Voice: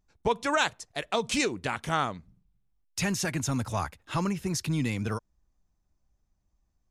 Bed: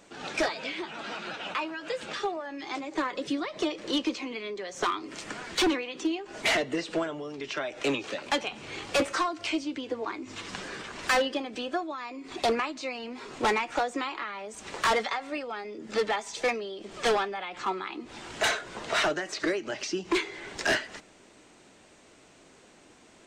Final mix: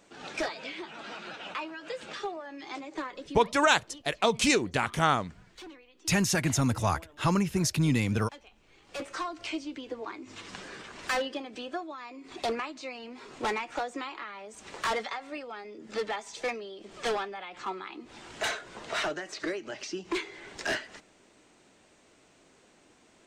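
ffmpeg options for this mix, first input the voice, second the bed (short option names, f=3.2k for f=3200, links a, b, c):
-filter_complex "[0:a]adelay=3100,volume=3dB[a];[1:a]volume=12.5dB,afade=t=out:st=2.81:d=0.86:silence=0.133352,afade=t=in:st=8.82:d=0.5:silence=0.141254[b];[a][b]amix=inputs=2:normalize=0"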